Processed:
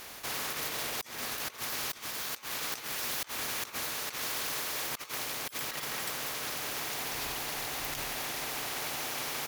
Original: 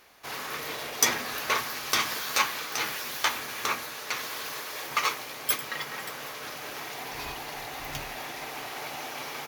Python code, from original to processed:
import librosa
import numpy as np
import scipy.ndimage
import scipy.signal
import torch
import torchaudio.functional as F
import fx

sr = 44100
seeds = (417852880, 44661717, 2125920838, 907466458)

y = fx.over_compress(x, sr, threshold_db=-36.0, ratio=-0.5)
y = fx.spectral_comp(y, sr, ratio=2.0)